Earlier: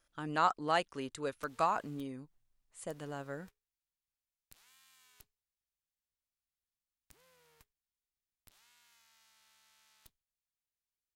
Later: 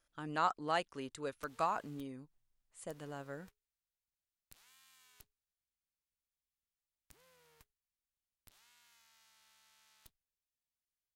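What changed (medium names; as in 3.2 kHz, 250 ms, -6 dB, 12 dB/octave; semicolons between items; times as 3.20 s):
speech -3.5 dB; reverb: off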